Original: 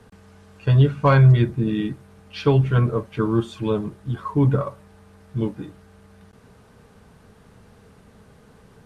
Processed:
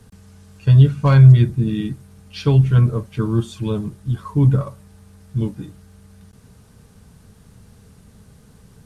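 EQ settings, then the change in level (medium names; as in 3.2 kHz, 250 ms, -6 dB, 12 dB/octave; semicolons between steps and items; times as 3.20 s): tone controls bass +11 dB, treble +5 dB; treble shelf 3.5 kHz +9 dB; -5.0 dB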